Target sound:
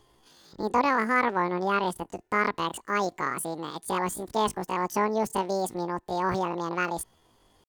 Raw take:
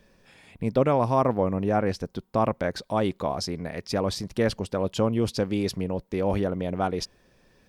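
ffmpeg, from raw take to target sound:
ffmpeg -i in.wav -af "asetrate=83250,aresample=44100,atempo=0.529732,volume=-2dB" out.wav

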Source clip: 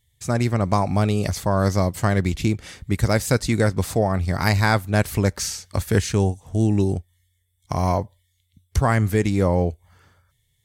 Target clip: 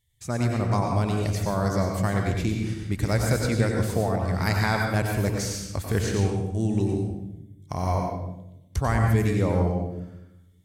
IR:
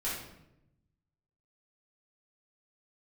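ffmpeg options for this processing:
-filter_complex "[0:a]asplit=2[link_01][link_02];[1:a]atrim=start_sample=2205,adelay=89[link_03];[link_02][link_03]afir=irnorm=-1:irlink=0,volume=-6dB[link_04];[link_01][link_04]amix=inputs=2:normalize=0,volume=-6.5dB"

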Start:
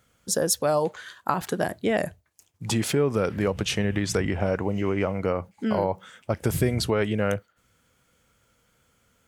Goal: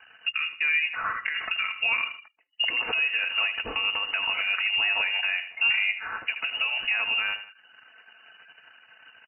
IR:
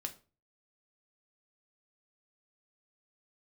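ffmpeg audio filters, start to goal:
-af "acompressor=threshold=-36dB:ratio=8,equalizer=frequency=1100:width=0.72:gain=6,aecho=1:1:4.9:0.58,aecho=1:1:79|158|237|316:0.224|0.0806|0.029|0.0104,alimiter=level_in=4.5dB:limit=-24dB:level=0:latency=1:release=215,volume=-4.5dB,asetrate=45392,aresample=44100,atempo=0.971532,lowpass=frequency=2600:width_type=q:width=0.5098,lowpass=frequency=2600:width_type=q:width=0.6013,lowpass=frequency=2600:width_type=q:width=0.9,lowpass=frequency=2600:width_type=q:width=2.563,afreqshift=-3000,anlmdn=0.0000251,acontrast=89,volume=6dB" -ar 16000 -c:a libvorbis -b:a 32k

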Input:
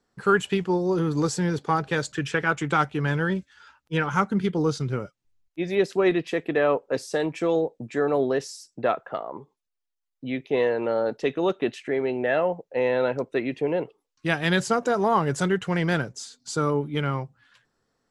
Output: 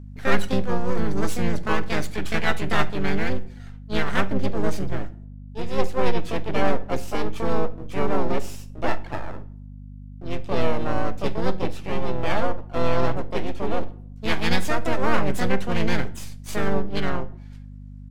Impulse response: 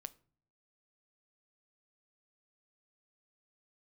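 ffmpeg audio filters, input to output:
-filter_complex "[0:a]aeval=exprs='max(val(0),0)':channel_layout=same,asplit=3[link_01][link_02][link_03];[link_02]asetrate=22050,aresample=44100,atempo=2,volume=-4dB[link_04];[link_03]asetrate=58866,aresample=44100,atempo=0.749154,volume=0dB[link_05];[link_01][link_04][link_05]amix=inputs=3:normalize=0,aeval=exprs='val(0)+0.0178*(sin(2*PI*50*n/s)+sin(2*PI*2*50*n/s)/2+sin(2*PI*3*50*n/s)/3+sin(2*PI*4*50*n/s)/4+sin(2*PI*5*50*n/s)/5)':channel_layout=same[link_06];[1:a]atrim=start_sample=2205,asetrate=30870,aresample=44100[link_07];[link_06][link_07]afir=irnorm=-1:irlink=0,volume=1.5dB"

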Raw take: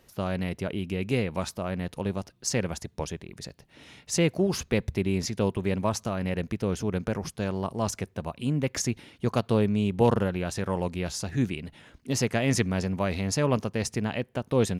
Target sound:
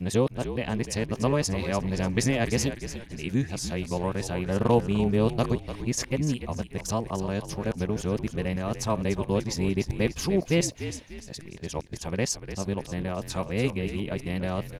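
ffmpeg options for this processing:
ffmpeg -i in.wav -filter_complex "[0:a]areverse,bandreject=frequency=1400:width=9.7,asplit=2[link_01][link_02];[link_02]asplit=4[link_03][link_04][link_05][link_06];[link_03]adelay=295,afreqshift=-57,volume=-10.5dB[link_07];[link_04]adelay=590,afreqshift=-114,volume=-18.7dB[link_08];[link_05]adelay=885,afreqshift=-171,volume=-26.9dB[link_09];[link_06]adelay=1180,afreqshift=-228,volume=-35dB[link_10];[link_07][link_08][link_09][link_10]amix=inputs=4:normalize=0[link_11];[link_01][link_11]amix=inputs=2:normalize=0" out.wav

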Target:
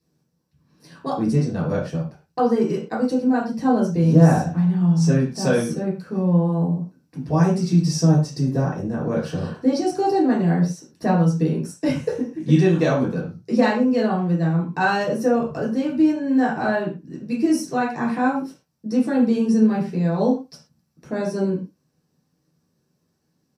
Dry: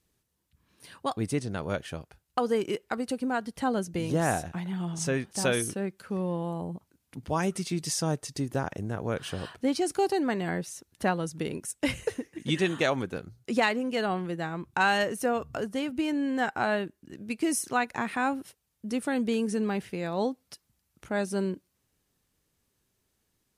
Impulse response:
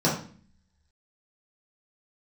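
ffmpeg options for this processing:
-filter_complex "[0:a]highshelf=frequency=7300:gain=5,asplit=2[link_01][link_02];[link_02]adelay=80,highpass=300,lowpass=3400,asoftclip=type=hard:threshold=-21dB,volume=-21dB[link_03];[link_01][link_03]amix=inputs=2:normalize=0[link_04];[1:a]atrim=start_sample=2205,atrim=end_sample=6174[link_05];[link_04][link_05]afir=irnorm=-1:irlink=0,volume=-11.5dB"

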